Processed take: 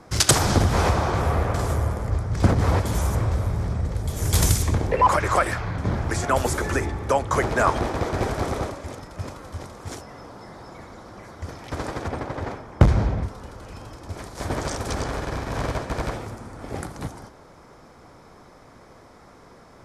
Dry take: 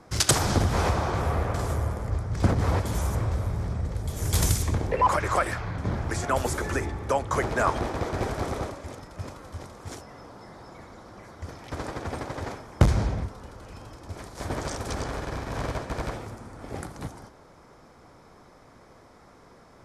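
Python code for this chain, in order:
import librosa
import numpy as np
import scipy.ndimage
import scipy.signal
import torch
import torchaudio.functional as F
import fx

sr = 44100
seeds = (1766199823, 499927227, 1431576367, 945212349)

y = fx.high_shelf(x, sr, hz=4300.0, db=-11.5, at=(12.08, 13.23))
y = F.gain(torch.from_numpy(y), 4.0).numpy()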